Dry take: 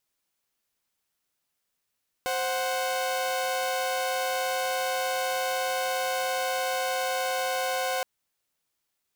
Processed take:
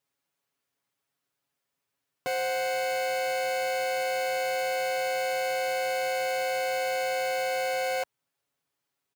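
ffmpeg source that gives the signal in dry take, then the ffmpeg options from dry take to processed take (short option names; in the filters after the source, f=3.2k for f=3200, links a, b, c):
-f lavfi -i "aevalsrc='0.0473*((2*mod(523.25*t,1)-1)+(2*mod(739.99*t,1)-1))':d=5.77:s=44100"
-af "highpass=63,highshelf=f=2.9k:g=-8,aecho=1:1:7.2:0.75"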